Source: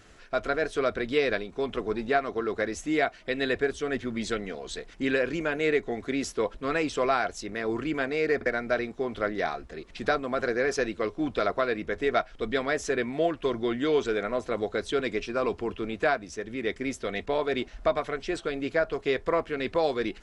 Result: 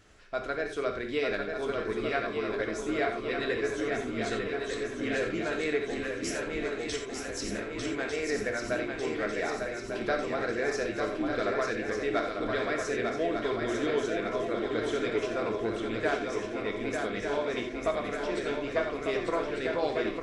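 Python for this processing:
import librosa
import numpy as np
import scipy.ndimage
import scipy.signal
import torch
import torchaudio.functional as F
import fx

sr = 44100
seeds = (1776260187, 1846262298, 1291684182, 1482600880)

y = fx.over_compress(x, sr, threshold_db=-37.0, ratio=-1.0, at=(6.02, 7.85))
y = fx.echo_swing(y, sr, ms=1198, ratio=3, feedback_pct=56, wet_db=-4.5)
y = fx.rev_gated(y, sr, seeds[0], gate_ms=110, shape='flat', drr_db=3.5)
y = y * librosa.db_to_amplitude(-6.0)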